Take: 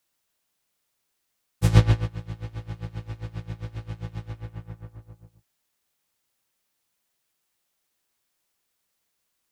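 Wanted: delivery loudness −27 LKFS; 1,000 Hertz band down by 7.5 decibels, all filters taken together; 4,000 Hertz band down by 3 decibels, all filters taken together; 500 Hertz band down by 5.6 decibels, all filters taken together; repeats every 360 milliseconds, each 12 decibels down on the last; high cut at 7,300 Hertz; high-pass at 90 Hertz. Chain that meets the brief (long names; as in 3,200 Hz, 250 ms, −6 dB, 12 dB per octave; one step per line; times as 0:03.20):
high-pass filter 90 Hz
low-pass filter 7,300 Hz
parametric band 500 Hz −5 dB
parametric band 1,000 Hz −8 dB
parametric band 4,000 Hz −3 dB
repeating echo 360 ms, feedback 25%, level −12 dB
level +2.5 dB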